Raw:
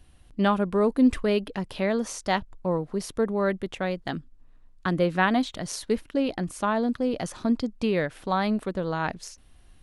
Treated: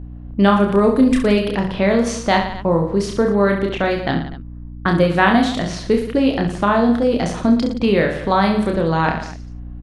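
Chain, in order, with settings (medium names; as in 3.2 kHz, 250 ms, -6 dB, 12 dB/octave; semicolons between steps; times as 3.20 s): level-controlled noise filter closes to 860 Hz, open at -22 dBFS; reverse bouncing-ball echo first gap 30 ms, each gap 1.25×, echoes 5; in parallel at +2 dB: compression, threshold -28 dBFS, peak gain reduction 12.5 dB; on the sum: hum 60 Hz, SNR 16 dB; trim +4 dB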